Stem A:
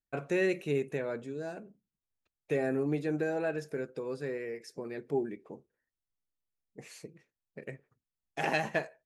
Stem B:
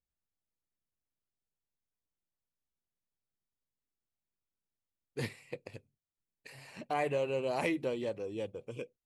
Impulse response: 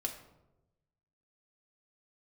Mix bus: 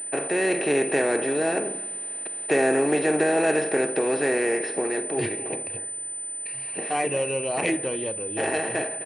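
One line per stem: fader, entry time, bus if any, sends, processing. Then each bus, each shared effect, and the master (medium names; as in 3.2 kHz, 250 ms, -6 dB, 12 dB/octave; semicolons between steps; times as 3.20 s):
-0.5 dB, 0.00 s, send -15 dB, echo send -19 dB, spectral levelling over time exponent 0.4; high-pass 250 Hz 12 dB/octave; level rider gain up to 5 dB; auto duck -9 dB, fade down 0.45 s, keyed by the second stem
+1.5 dB, 0.00 s, send -5.5 dB, no echo send, peaking EQ 2.7 kHz +7 dB 0.53 oct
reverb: on, RT60 1.0 s, pre-delay 3 ms
echo: delay 260 ms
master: class-D stage that switches slowly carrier 9 kHz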